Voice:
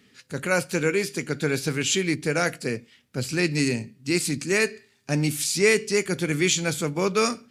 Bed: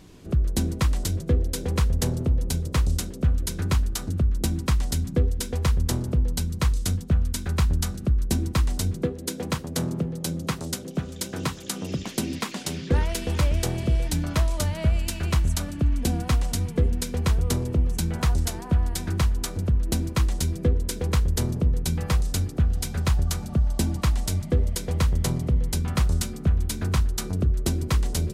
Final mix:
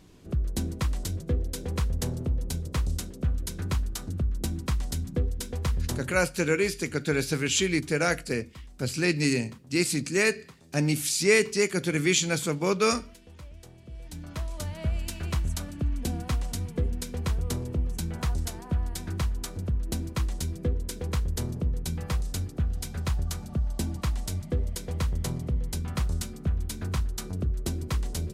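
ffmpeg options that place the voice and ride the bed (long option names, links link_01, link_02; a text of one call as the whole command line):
ffmpeg -i stem1.wav -i stem2.wav -filter_complex "[0:a]adelay=5650,volume=-1.5dB[link_01];[1:a]volume=12dB,afade=type=out:start_time=5.92:duration=0.33:silence=0.125893,afade=type=in:start_time=13.86:duration=1.15:silence=0.133352[link_02];[link_01][link_02]amix=inputs=2:normalize=0" out.wav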